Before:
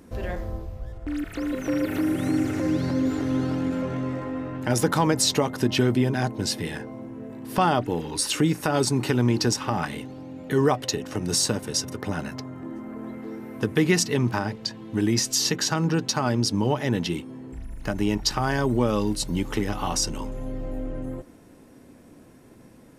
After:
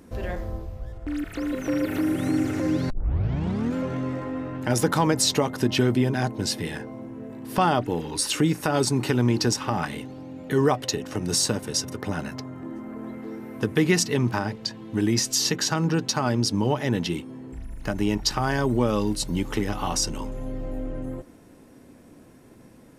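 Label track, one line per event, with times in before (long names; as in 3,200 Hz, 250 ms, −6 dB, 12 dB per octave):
2.900000	2.900000	tape start 0.85 s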